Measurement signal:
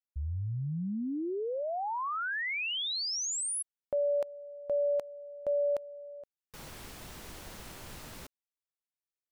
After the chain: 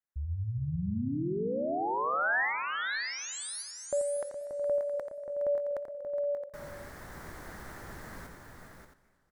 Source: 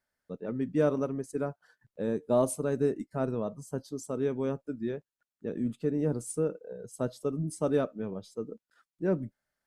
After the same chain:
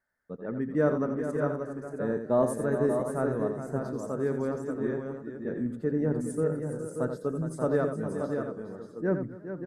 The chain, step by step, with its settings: resonant high shelf 2200 Hz -6.5 dB, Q 3; tapped delay 86/416/582/603/669 ms -8.5/-10/-6.5/-19.5/-12 dB; warbling echo 0.243 s, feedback 58%, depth 136 cents, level -19.5 dB

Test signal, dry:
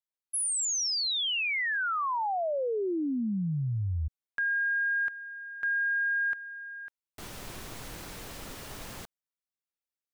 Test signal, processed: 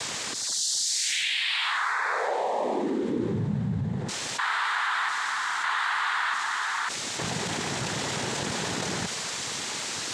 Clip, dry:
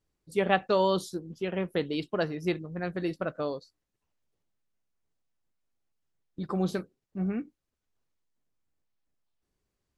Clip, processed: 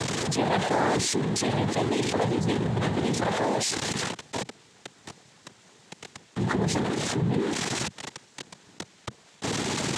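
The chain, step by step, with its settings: zero-crossing step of -29.5 dBFS; noise vocoder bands 6; fast leveller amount 70%; gain -3 dB

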